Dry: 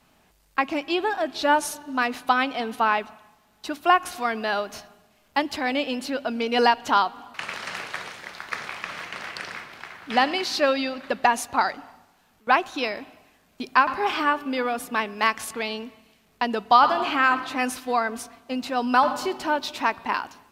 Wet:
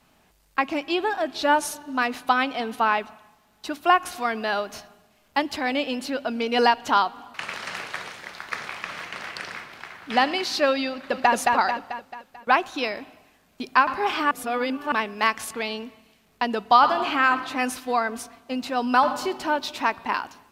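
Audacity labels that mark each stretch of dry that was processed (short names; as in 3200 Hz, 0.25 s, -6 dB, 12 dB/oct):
10.900000	11.330000	echo throw 0.22 s, feedback 50%, level -2 dB
14.310000	14.920000	reverse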